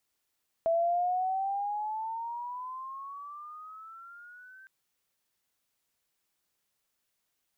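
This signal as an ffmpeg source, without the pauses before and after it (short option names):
-f lavfi -i "aevalsrc='pow(10,(-23-26.5*t/4.01)/20)*sin(2*PI*658*4.01/(15*log(2)/12)*(exp(15*log(2)/12*t/4.01)-1))':d=4.01:s=44100"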